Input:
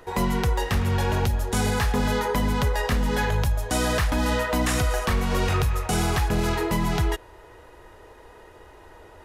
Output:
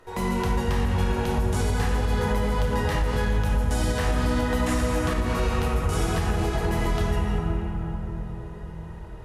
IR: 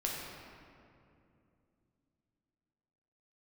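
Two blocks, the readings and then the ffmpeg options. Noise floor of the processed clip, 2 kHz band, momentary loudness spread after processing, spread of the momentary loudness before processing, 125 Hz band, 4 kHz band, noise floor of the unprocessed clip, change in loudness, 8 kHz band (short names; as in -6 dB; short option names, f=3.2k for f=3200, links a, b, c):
-37 dBFS, -3.0 dB, 9 LU, 2 LU, 0.0 dB, -4.0 dB, -49 dBFS, -1.0 dB, -5.0 dB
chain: -filter_complex "[1:a]atrim=start_sample=2205,asetrate=24696,aresample=44100[a];[0:a][a]afir=irnorm=-1:irlink=0,alimiter=limit=-6.5dB:level=0:latency=1:release=119,volume=-8dB"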